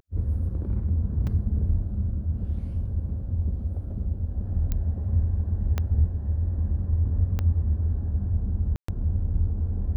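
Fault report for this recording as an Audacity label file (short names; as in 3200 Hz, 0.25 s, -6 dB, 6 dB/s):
1.270000	1.270000	gap 4.2 ms
4.720000	4.720000	pop -15 dBFS
5.780000	5.780000	pop -14 dBFS
7.390000	7.390000	pop -16 dBFS
8.760000	8.880000	gap 0.124 s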